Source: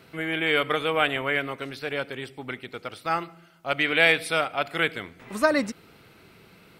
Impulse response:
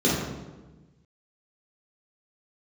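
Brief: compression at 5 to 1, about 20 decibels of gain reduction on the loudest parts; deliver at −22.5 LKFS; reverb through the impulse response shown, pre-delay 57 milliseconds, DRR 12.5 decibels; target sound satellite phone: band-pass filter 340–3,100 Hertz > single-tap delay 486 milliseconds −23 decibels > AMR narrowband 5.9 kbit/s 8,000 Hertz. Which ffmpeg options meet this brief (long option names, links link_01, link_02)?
-filter_complex "[0:a]acompressor=threshold=-38dB:ratio=5,asplit=2[link_01][link_02];[1:a]atrim=start_sample=2205,adelay=57[link_03];[link_02][link_03]afir=irnorm=-1:irlink=0,volume=-29dB[link_04];[link_01][link_04]amix=inputs=2:normalize=0,highpass=340,lowpass=3100,aecho=1:1:486:0.0708,volume=20.5dB" -ar 8000 -c:a libopencore_amrnb -b:a 5900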